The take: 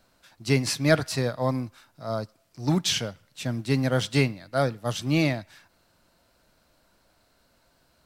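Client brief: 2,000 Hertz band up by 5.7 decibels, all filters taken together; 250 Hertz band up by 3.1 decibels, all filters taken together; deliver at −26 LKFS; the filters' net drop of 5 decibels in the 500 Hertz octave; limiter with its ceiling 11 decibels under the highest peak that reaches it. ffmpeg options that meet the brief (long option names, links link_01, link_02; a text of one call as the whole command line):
ffmpeg -i in.wav -af "equalizer=frequency=250:width_type=o:gain=6.5,equalizer=frequency=500:width_type=o:gain=-9,equalizer=frequency=2000:width_type=o:gain=7.5,volume=2dB,alimiter=limit=-14dB:level=0:latency=1" out.wav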